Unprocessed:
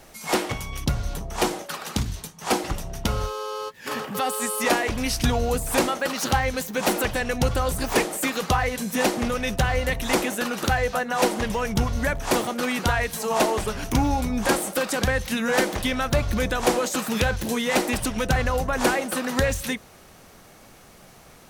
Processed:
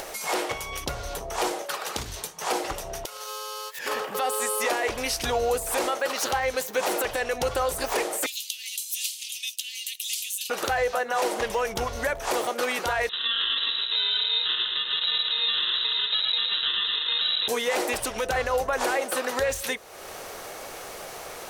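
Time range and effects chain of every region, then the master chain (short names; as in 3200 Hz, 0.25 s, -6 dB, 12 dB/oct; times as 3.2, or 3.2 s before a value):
3.05–3.79 compressor 12:1, threshold -38 dBFS + HPF 330 Hz 6 dB/oct + tilt +4 dB/oct
8.26–10.5 steep high-pass 2800 Hz 48 dB/oct + high shelf 9700 Hz +5.5 dB + notch 5600 Hz, Q 23
13.09–17.48 sample-rate reducer 1600 Hz + feedback echo 0.109 s, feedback 47%, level -8.5 dB + inverted band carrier 3900 Hz
whole clip: resonant low shelf 310 Hz -11.5 dB, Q 1.5; limiter -16 dBFS; upward compressor, threshold -27 dBFS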